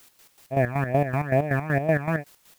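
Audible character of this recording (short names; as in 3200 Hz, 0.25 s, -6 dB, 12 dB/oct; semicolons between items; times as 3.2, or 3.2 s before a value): phasing stages 12, 2.3 Hz, lowest notch 520–1600 Hz; a quantiser's noise floor 10-bit, dither triangular; chopped level 5.3 Hz, depth 65%, duty 45%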